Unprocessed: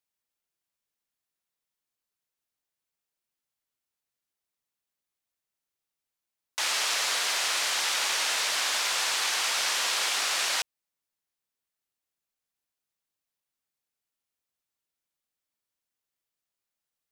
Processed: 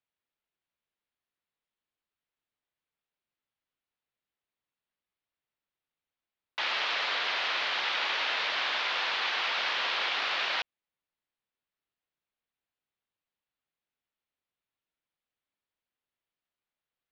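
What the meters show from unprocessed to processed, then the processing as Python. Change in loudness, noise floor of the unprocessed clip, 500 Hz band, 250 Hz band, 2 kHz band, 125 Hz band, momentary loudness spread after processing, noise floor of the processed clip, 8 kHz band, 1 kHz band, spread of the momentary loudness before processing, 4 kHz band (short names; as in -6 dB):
-3.0 dB, under -85 dBFS, 0.0 dB, 0.0 dB, 0.0 dB, n/a, 3 LU, under -85 dBFS, -23.0 dB, 0.0 dB, 3 LU, -3.0 dB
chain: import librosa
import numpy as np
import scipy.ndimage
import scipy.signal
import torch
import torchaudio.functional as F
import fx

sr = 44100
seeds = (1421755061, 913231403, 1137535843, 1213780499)

y = scipy.signal.sosfilt(scipy.signal.cheby2(4, 50, 8800.0, 'lowpass', fs=sr, output='sos'), x)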